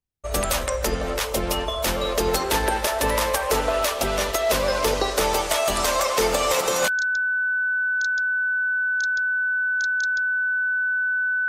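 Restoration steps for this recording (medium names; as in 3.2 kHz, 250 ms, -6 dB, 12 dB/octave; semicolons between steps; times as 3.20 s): band-stop 1.5 kHz, Q 30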